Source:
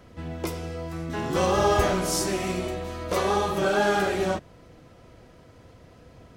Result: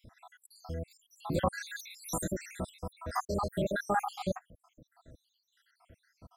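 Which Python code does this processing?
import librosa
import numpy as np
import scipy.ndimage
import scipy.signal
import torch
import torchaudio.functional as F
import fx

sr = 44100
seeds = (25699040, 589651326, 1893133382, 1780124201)

y = fx.spec_dropout(x, sr, seeds[0], share_pct=79)
y = fx.graphic_eq_15(y, sr, hz=(400, 2500, 6300), db=(-10, -10, -4))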